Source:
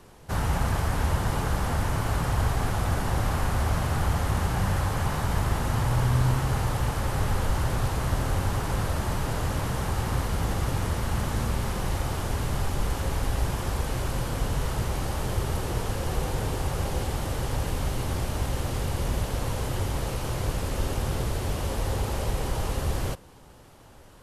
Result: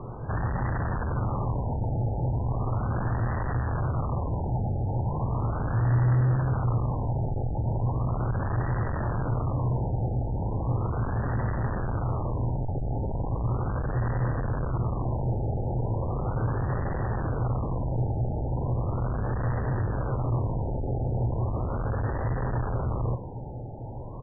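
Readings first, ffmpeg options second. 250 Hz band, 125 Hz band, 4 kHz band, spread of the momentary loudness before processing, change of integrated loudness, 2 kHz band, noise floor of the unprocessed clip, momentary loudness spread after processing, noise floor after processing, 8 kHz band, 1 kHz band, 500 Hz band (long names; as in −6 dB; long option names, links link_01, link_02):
0.0 dB, +1.5 dB, below −40 dB, 4 LU, −0.5 dB, −6.5 dB, −50 dBFS, 2 LU, −35 dBFS, below −40 dB, −2.5 dB, −1.0 dB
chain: -filter_complex "[0:a]bandreject=frequency=1400:width=7.2,asplit=2[link_01][link_02];[link_02]aeval=exprs='0.282*sin(PI/2*3.98*val(0)/0.282)':channel_layout=same,volume=-5dB[link_03];[link_01][link_03]amix=inputs=2:normalize=0,aresample=11025,aresample=44100,asoftclip=type=tanh:threshold=-28.5dB,equalizer=frequency=120:width_type=o:width=0.32:gain=11,afftfilt=real='re*lt(b*sr/1024,890*pow(2000/890,0.5+0.5*sin(2*PI*0.37*pts/sr)))':imag='im*lt(b*sr/1024,890*pow(2000/890,0.5+0.5*sin(2*PI*0.37*pts/sr)))':win_size=1024:overlap=0.75"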